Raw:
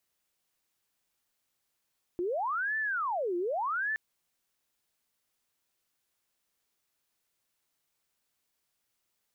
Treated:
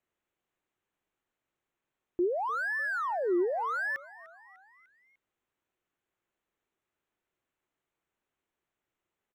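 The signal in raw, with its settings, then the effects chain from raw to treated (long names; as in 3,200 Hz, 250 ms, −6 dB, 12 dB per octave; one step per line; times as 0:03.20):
siren wail 347–1,760 Hz 0.85 per second sine −28.5 dBFS 1.77 s
adaptive Wiener filter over 9 samples
parametric band 360 Hz +6 dB 0.45 octaves
echo with shifted repeats 299 ms, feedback 55%, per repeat +100 Hz, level −20 dB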